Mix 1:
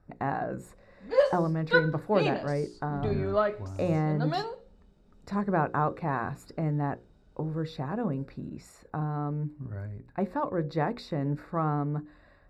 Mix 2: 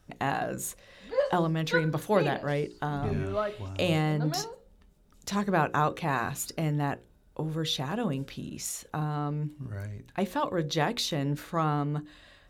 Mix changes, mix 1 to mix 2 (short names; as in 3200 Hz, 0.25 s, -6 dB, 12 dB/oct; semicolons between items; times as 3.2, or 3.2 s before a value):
speech: remove running mean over 14 samples; background -4.5 dB